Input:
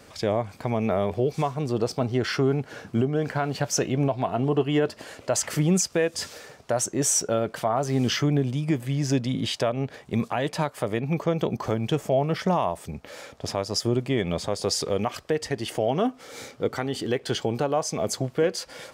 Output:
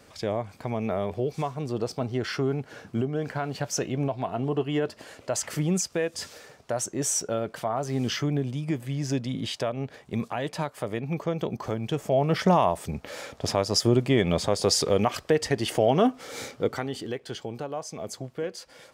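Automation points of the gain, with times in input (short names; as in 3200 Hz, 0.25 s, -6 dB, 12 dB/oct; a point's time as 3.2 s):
11.92 s -4 dB
12.4 s +3 dB
16.45 s +3 dB
17.27 s -9 dB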